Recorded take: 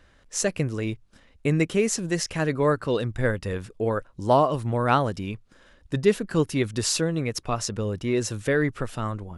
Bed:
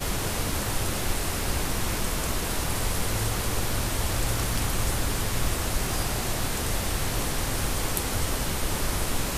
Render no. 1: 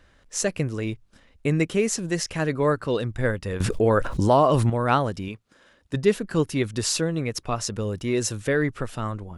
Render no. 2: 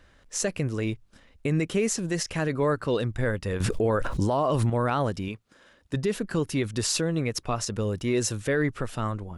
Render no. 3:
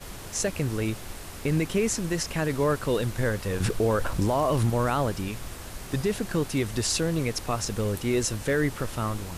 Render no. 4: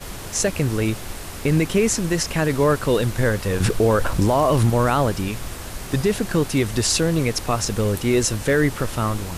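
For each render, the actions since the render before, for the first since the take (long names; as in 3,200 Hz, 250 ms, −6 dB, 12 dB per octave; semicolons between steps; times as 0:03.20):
0:03.60–0:04.70: envelope flattener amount 70%; 0:05.28–0:05.94: high-pass filter 190 Hz 6 dB per octave; 0:07.65–0:08.31: high-shelf EQ 8,900 Hz → 4,800 Hz +7 dB
brickwall limiter −16 dBFS, peak gain reduction 9 dB
mix in bed −12 dB
level +6.5 dB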